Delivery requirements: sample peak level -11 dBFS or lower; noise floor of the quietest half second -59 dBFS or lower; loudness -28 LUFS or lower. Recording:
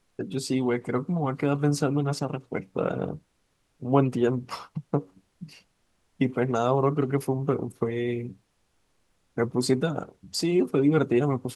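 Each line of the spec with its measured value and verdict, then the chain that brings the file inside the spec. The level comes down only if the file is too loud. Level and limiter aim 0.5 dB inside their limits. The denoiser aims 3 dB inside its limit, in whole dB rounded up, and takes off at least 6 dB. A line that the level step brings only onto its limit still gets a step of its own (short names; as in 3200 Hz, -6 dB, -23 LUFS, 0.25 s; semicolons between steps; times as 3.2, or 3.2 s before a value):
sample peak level -6.5 dBFS: fail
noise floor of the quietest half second -71 dBFS: OK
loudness -26.5 LUFS: fail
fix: gain -2 dB; limiter -11.5 dBFS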